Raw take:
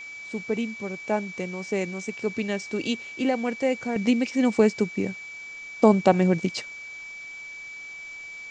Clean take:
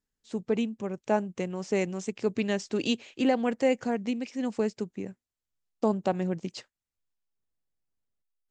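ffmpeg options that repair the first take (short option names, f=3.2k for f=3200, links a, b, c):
-af "bandreject=f=2.3k:w=30,afwtdn=0.0035,asetnsamples=n=441:p=0,asendcmd='3.96 volume volume -9dB',volume=0dB"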